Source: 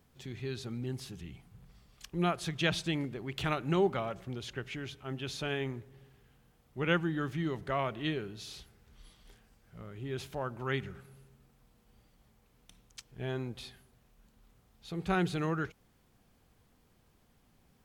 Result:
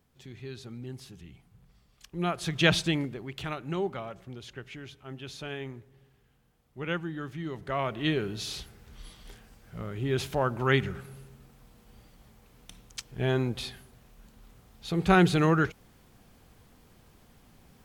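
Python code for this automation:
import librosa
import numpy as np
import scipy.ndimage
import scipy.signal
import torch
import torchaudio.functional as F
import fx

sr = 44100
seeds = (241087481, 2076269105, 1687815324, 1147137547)

y = fx.gain(x, sr, db=fx.line((2.07, -3.0), (2.71, 8.5), (3.47, -3.0), (7.4, -3.0), (8.34, 9.5)))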